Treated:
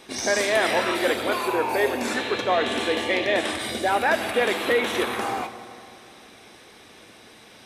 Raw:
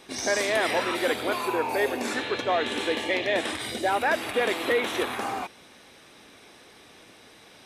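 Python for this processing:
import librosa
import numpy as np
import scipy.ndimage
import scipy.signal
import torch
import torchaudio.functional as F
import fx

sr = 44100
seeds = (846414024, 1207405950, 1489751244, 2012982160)

y = fx.rev_fdn(x, sr, rt60_s=2.6, lf_ratio=1.0, hf_ratio=0.65, size_ms=27.0, drr_db=10.0)
y = y * librosa.db_to_amplitude(2.5)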